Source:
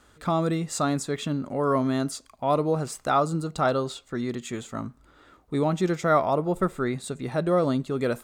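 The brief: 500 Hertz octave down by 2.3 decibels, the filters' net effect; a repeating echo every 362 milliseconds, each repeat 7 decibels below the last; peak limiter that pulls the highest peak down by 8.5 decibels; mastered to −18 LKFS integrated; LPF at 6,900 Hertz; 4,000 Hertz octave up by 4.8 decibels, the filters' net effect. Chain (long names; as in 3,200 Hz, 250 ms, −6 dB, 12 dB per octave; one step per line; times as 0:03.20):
low-pass filter 6,900 Hz
parametric band 500 Hz −3 dB
parametric band 4,000 Hz +6 dB
brickwall limiter −19 dBFS
repeating echo 362 ms, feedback 45%, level −7 dB
level +11 dB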